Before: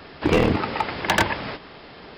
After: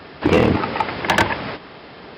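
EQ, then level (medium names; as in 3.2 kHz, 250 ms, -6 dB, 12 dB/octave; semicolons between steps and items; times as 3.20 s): high-pass 65 Hz; treble shelf 4.6 kHz -5.5 dB; +4.0 dB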